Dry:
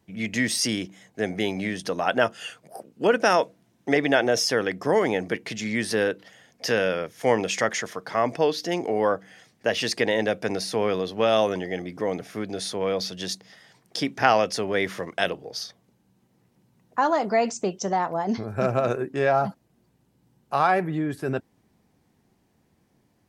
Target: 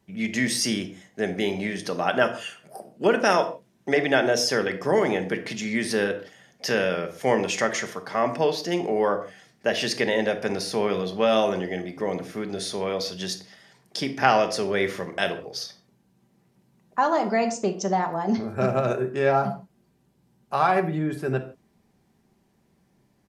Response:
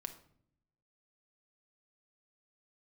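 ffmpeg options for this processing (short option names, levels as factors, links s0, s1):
-filter_complex "[1:a]atrim=start_sample=2205,afade=t=out:st=0.22:d=0.01,atrim=end_sample=10143[s0];[0:a][s0]afir=irnorm=-1:irlink=0,aresample=32000,aresample=44100,volume=1.41"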